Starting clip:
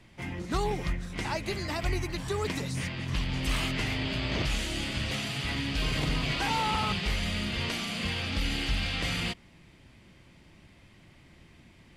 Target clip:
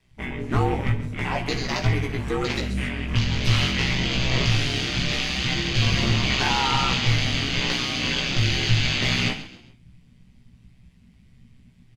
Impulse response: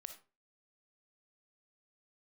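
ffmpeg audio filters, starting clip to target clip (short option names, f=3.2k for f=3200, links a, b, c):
-filter_complex "[0:a]afwtdn=0.00891,lowshelf=f=97:g=6,aeval=exprs='val(0)*sin(2*PI*66*n/s)':c=same,asplit=2[a][b];[b]adelay=17,volume=-3.5dB[c];[a][c]amix=inputs=2:normalize=0,asplit=4[d][e][f][g];[e]adelay=134,afreqshift=39,volume=-14.5dB[h];[f]adelay=268,afreqshift=78,volume=-23.4dB[i];[g]adelay=402,afreqshift=117,volume=-32.2dB[j];[d][h][i][j]amix=inputs=4:normalize=0,asplit=2[k][l];[1:a]atrim=start_sample=2205,asetrate=52920,aresample=44100,highshelf=f=2.2k:g=12[m];[l][m]afir=irnorm=-1:irlink=0,volume=7dB[n];[k][n]amix=inputs=2:normalize=0"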